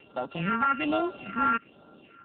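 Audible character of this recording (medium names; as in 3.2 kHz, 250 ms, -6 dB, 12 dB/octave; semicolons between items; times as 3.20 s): a buzz of ramps at a fixed pitch in blocks of 32 samples; phasing stages 4, 1.2 Hz, lowest notch 540–2300 Hz; AMR-NB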